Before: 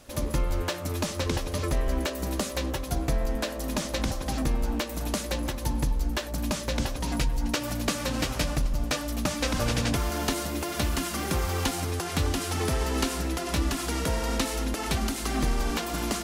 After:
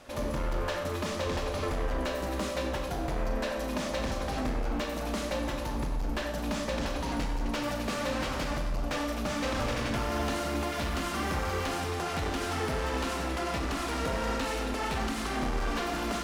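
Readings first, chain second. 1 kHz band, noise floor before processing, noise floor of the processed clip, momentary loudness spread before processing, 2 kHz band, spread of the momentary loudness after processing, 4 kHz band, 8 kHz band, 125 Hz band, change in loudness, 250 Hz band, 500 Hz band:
+0.5 dB, −35 dBFS, −34 dBFS, 3 LU, −0.5 dB, 2 LU, −4.5 dB, −8.5 dB, −5.5 dB, −3.0 dB, −3.0 dB, 0.0 dB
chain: gain into a clipping stage and back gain 26 dB
mid-hump overdrive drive 9 dB, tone 1,800 Hz, clips at −26 dBFS
four-comb reverb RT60 0.85 s, combs from 28 ms, DRR 3.5 dB
level +1 dB

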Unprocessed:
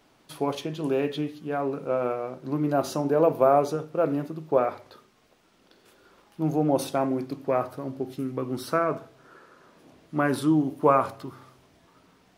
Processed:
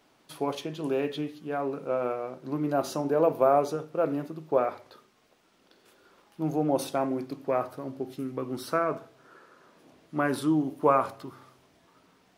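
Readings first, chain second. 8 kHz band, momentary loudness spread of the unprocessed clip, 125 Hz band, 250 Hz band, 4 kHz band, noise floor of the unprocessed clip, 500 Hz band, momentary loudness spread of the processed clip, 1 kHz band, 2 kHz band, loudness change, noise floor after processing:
−2.0 dB, 11 LU, −5.0 dB, −3.0 dB, −2.0 dB, −62 dBFS, −2.5 dB, 12 LU, −2.0 dB, −2.0 dB, −2.5 dB, −64 dBFS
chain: low-shelf EQ 120 Hz −7.5 dB
level −2 dB

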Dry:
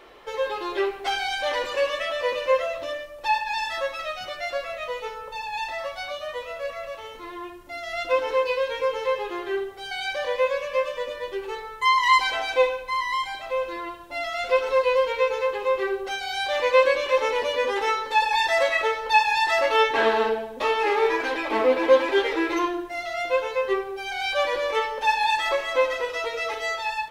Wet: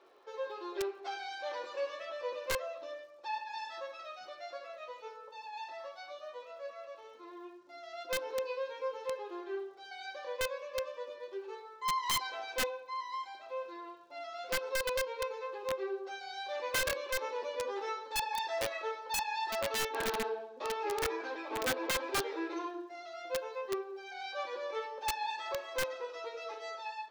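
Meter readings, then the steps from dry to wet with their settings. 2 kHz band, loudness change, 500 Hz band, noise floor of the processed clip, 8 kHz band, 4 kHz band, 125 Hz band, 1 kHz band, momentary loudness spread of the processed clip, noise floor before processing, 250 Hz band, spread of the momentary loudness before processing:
−14.0 dB, −13.5 dB, −14.0 dB, −53 dBFS, −0.5 dB, −11.0 dB, can't be measured, −14.0 dB, 13 LU, −39 dBFS, −12.0 dB, 12 LU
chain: flanger 0.12 Hz, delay 7.1 ms, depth 5 ms, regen −62%
loudspeaker in its box 330–6,200 Hz, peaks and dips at 360 Hz +5 dB, 2,000 Hz −8 dB, 3,000 Hz −7 dB
surface crackle 120 per second −55 dBFS
wrap-around overflow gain 18 dB
level −8.5 dB

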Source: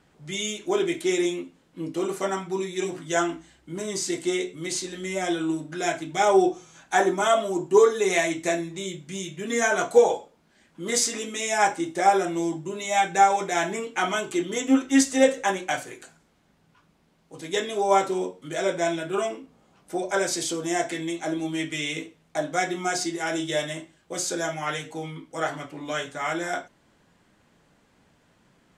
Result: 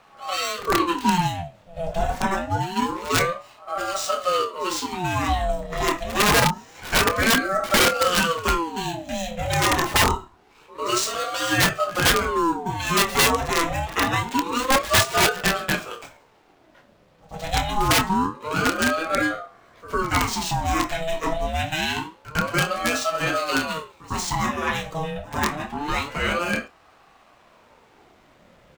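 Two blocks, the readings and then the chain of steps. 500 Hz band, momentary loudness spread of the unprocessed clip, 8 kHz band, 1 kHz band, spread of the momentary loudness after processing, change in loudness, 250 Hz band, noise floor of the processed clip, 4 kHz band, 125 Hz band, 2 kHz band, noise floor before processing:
−2.5 dB, 14 LU, +2.5 dB, +3.0 dB, 11 LU, +3.0 dB, 0.0 dB, −56 dBFS, +8.0 dB, +10.5 dB, +6.0 dB, −63 dBFS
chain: running median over 5 samples
in parallel at +0.5 dB: downward compressor 10 to 1, threshold −34 dBFS, peak gain reduction 22.5 dB
on the sum: wrap-around overflow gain 13 dB
double-tracking delay 27 ms −10 dB
on a send: backwards echo 103 ms −17.5 dB
on the sum: ring modulator whose carrier an LFO sweeps 650 Hz, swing 50%, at 0.26 Hz
level +4 dB

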